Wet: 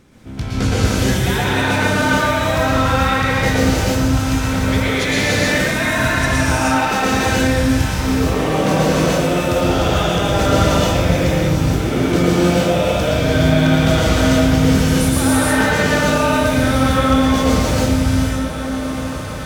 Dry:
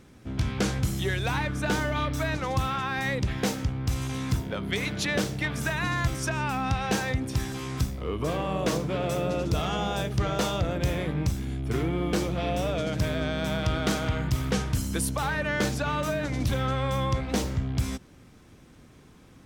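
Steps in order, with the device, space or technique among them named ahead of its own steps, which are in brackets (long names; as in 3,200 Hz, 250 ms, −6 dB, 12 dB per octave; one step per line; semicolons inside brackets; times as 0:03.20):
0:06.32–0:06.93: inverse Chebyshev high-pass filter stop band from 150 Hz, stop band 40 dB
bathroom (convolution reverb RT60 0.80 s, pre-delay 107 ms, DRR −3.5 dB)
feedback delay with all-pass diffusion 1,384 ms, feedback 69%, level −12 dB
reverb whose tail is shaped and stops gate 340 ms rising, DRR −4 dB
level +2 dB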